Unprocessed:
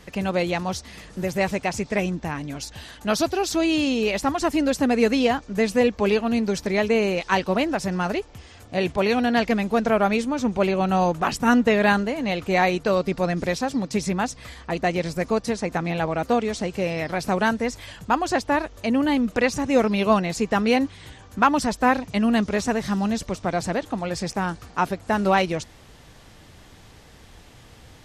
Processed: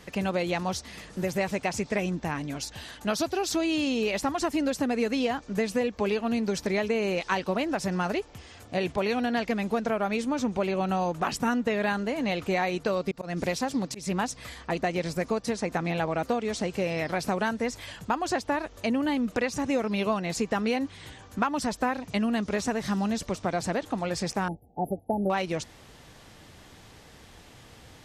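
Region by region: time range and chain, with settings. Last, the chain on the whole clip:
13.11–14.58 s: slow attack 209 ms + treble shelf 11 kHz +9.5 dB + loudspeaker Doppler distortion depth 0.13 ms
24.48–25.30 s: gate -38 dBFS, range -11 dB + brick-wall FIR band-stop 880–10000 Hz
whole clip: bass shelf 74 Hz -7.5 dB; compression, threshold -22 dBFS; trim -1 dB

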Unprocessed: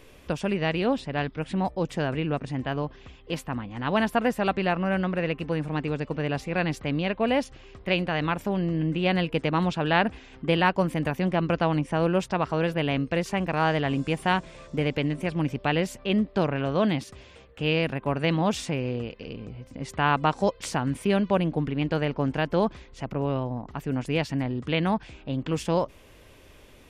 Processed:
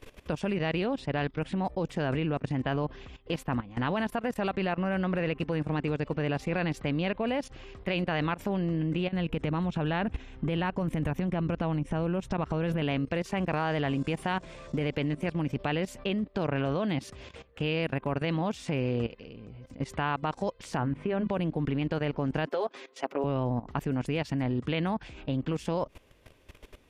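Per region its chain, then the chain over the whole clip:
9.07–12.82 s: bass shelf 160 Hz +11 dB + band-stop 4.7 kHz, Q 7.8 + compression, threshold -26 dBFS
20.77–21.28 s: low-pass 2 kHz + hum notches 50/100/150/200/250/300 Hz
22.46–23.24 s: high-pass 310 Hz 24 dB/octave + comb 7.4 ms, depth 77%
whole clip: compression 16:1, threshold -25 dBFS; treble shelf 5.1 kHz -3.5 dB; level held to a coarse grid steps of 17 dB; trim +5.5 dB

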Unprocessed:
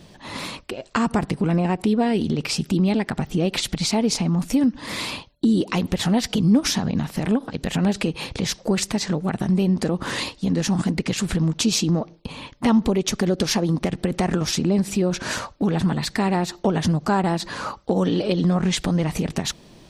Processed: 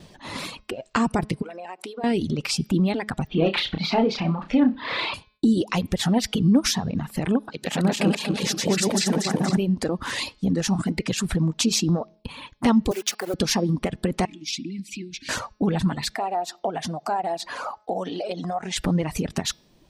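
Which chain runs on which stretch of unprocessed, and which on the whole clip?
1.42–2.04 s: Chebyshev high-pass 530 Hz + compression, threshold -29 dBFS
3.29–5.14 s: Chebyshev low-pass 3.8 kHz, order 3 + flutter echo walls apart 5.3 m, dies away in 0.33 s + overdrive pedal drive 13 dB, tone 2.2 kHz, clips at -7 dBFS
7.49–9.57 s: backward echo that repeats 118 ms, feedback 74%, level -1 dB + high-pass 170 Hz
12.91–13.34 s: send-on-delta sampling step -28 dBFS + high-pass 460 Hz
14.25–15.29 s: Chebyshev band-stop 310–2200 Hz, order 4 + three-band isolator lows -17 dB, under 290 Hz, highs -14 dB, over 5.5 kHz
16.14–18.76 s: high-pass 400 Hz 6 dB/octave + peaking EQ 710 Hz +15 dB 0.51 oct + compression 2:1, threshold -27 dBFS
whole clip: de-hum 212.7 Hz, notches 27; reverb removal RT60 1.3 s; gate with hold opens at -51 dBFS

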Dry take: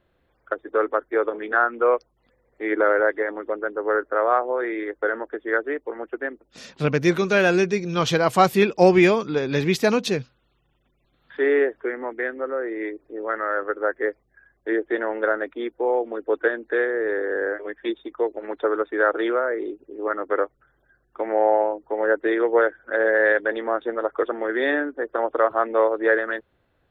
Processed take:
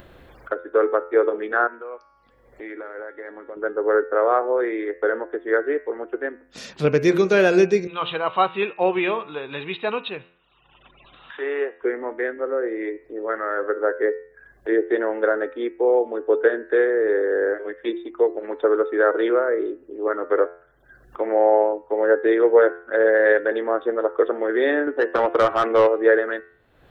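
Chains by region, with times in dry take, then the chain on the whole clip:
1.67–3.57 s: compression 4:1, threshold -21 dBFS + feedback comb 280 Hz, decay 0.79 s, mix 70%
7.87–11.82 s: rippled Chebyshev low-pass 3.9 kHz, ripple 9 dB + tilt shelf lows -5.5 dB, about 730 Hz
24.87–25.87 s: dynamic bell 580 Hz, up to -5 dB, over -30 dBFS, Q 1 + overdrive pedal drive 18 dB, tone 2.7 kHz, clips at -8.5 dBFS
whole clip: upward compressor, threshold -29 dBFS; de-hum 86.72 Hz, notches 33; dynamic bell 430 Hz, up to +7 dB, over -34 dBFS, Q 1.7; trim -1 dB

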